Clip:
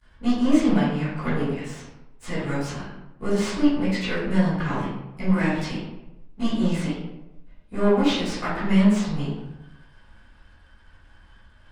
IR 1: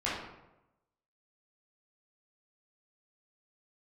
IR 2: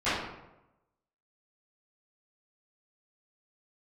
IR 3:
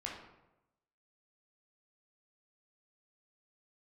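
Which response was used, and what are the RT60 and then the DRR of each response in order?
2; 0.95, 0.95, 0.95 seconds; −9.0, −18.5, −3.0 decibels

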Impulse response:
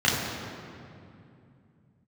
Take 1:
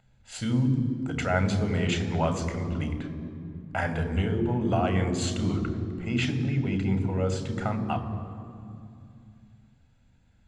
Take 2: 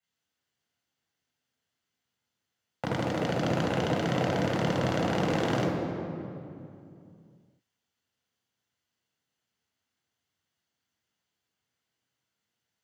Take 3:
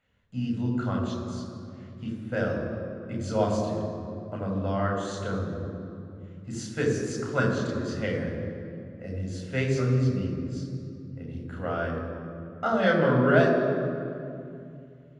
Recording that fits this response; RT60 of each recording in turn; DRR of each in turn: 2; 2.6, 2.6, 2.6 seconds; 8.0, −6.5, −1.0 decibels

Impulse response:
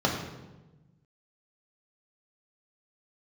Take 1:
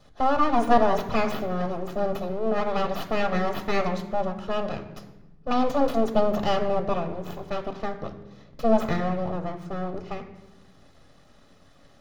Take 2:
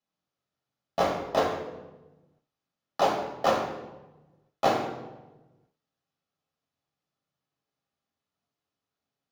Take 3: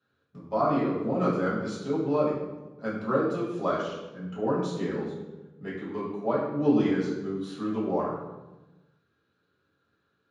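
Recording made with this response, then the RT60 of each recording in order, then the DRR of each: 2; 1.1, 1.1, 1.1 seconds; 7.5, −1.0, −7.0 decibels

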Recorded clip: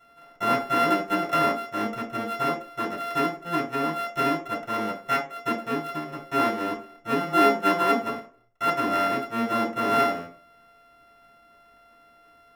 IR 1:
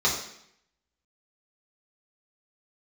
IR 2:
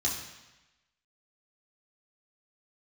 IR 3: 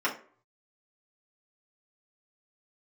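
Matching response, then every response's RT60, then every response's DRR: 3; 0.70, 1.0, 0.45 seconds; −7.0, −4.0, −6.0 decibels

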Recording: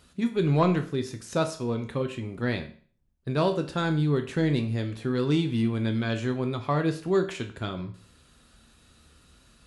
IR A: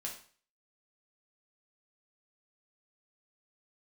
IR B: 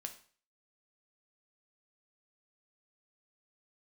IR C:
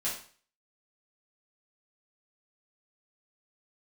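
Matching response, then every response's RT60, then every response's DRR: B; 0.45, 0.45, 0.45 seconds; −1.5, 5.5, −7.5 decibels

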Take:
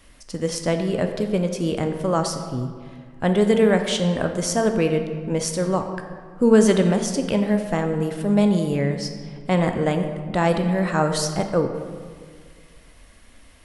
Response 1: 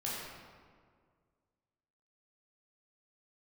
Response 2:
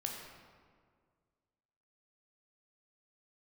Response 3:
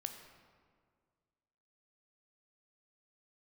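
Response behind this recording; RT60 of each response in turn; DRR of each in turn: 3; 1.9, 1.9, 1.9 seconds; −7.0, 0.0, 5.5 decibels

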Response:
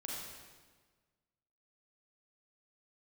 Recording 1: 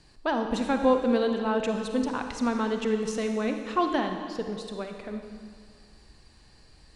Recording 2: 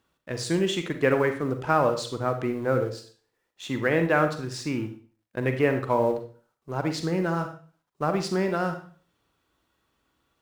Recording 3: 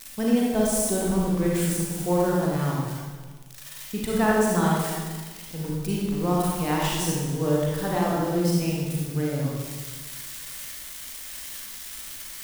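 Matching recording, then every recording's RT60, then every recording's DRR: 3; 2.0, 0.40, 1.5 seconds; 5.0, 6.5, −4.5 decibels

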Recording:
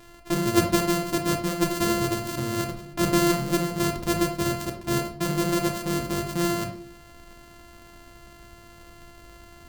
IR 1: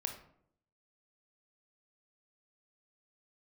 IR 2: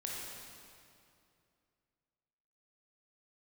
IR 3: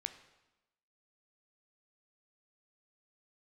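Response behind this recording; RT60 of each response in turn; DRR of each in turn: 1; 0.70, 2.5, 1.0 seconds; 4.0, −4.0, 9.0 decibels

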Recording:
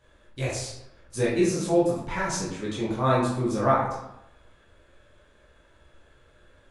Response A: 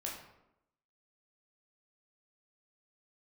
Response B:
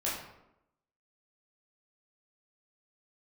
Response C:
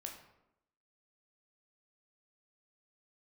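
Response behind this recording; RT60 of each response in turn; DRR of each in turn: B; 0.85, 0.85, 0.85 seconds; −3.0, −7.5, 1.5 decibels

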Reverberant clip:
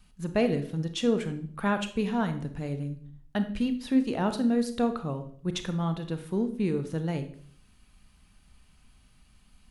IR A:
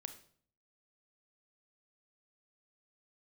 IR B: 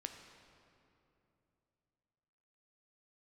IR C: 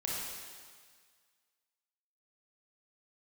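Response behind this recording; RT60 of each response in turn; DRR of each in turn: A; 0.55, 2.9, 1.7 seconds; 8.5, 5.0, −5.0 decibels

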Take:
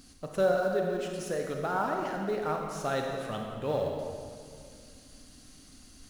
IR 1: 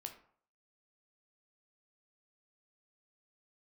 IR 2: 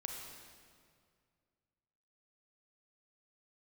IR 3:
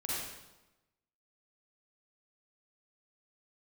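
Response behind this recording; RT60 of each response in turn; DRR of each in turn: 2; 0.55, 2.1, 1.0 seconds; 4.5, 1.0, −7.0 decibels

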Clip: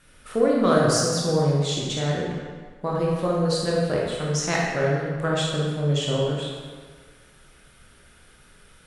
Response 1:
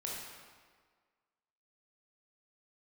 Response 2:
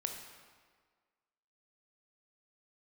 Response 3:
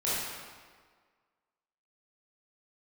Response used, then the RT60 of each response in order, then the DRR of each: 1; 1.6, 1.6, 1.6 seconds; −4.0, 3.0, −10.0 decibels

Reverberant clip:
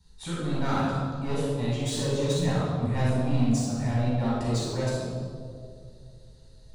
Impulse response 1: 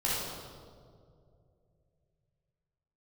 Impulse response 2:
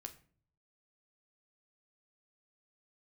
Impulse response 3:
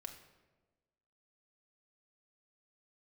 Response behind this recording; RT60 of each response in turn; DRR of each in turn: 1; 2.4, 0.50, 1.3 seconds; −8.0, 6.5, 4.0 decibels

